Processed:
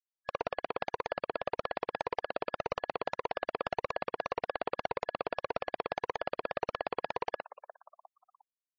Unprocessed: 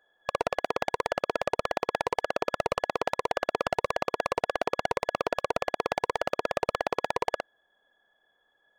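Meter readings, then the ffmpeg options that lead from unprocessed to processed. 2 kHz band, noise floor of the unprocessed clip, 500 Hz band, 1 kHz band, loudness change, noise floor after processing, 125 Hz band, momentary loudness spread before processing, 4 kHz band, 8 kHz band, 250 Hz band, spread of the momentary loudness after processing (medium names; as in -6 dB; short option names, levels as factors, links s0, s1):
-6.5 dB, -72 dBFS, -6.5 dB, -6.0 dB, -6.5 dB, under -85 dBFS, -6.5 dB, 1 LU, -7.5 dB, under -15 dB, -6.5 dB, 1 LU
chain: -filter_complex "[0:a]asplit=5[s0][s1][s2][s3][s4];[s1]adelay=355,afreqshift=90,volume=0.158[s5];[s2]adelay=710,afreqshift=180,volume=0.0794[s6];[s3]adelay=1065,afreqshift=270,volume=0.0398[s7];[s4]adelay=1420,afreqshift=360,volume=0.0197[s8];[s0][s5][s6][s7][s8]amix=inputs=5:normalize=0,afftfilt=real='re*gte(hypot(re,im),0.0112)':imag='im*gte(hypot(re,im),0.0112)':win_size=1024:overlap=0.75,volume=0.473"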